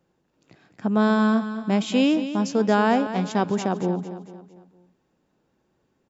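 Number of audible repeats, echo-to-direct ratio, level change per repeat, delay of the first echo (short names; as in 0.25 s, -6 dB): 4, -10.5 dB, -7.0 dB, 0.226 s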